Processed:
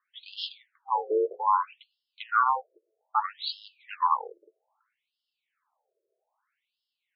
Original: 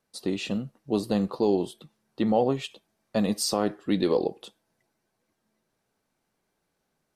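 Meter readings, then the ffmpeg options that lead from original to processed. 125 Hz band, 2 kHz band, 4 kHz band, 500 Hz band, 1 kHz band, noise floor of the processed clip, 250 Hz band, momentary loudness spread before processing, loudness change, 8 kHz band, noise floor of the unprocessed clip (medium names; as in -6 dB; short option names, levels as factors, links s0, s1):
under -40 dB, +4.5 dB, -2.0 dB, -7.0 dB, +9.0 dB, under -85 dBFS, under -20 dB, 8 LU, -1.0 dB, under -40 dB, -78 dBFS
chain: -af "aeval=exprs='val(0)*sin(2*PI*650*n/s)':c=same,highshelf=f=7800:g=-9.5,afftfilt=real='re*between(b*sr/1024,450*pow(3900/450,0.5+0.5*sin(2*PI*0.62*pts/sr))/1.41,450*pow(3900/450,0.5+0.5*sin(2*PI*0.62*pts/sr))*1.41)':imag='im*between(b*sr/1024,450*pow(3900/450,0.5+0.5*sin(2*PI*0.62*pts/sr))/1.41,450*pow(3900/450,0.5+0.5*sin(2*PI*0.62*pts/sr))*1.41)':win_size=1024:overlap=0.75,volume=2.24"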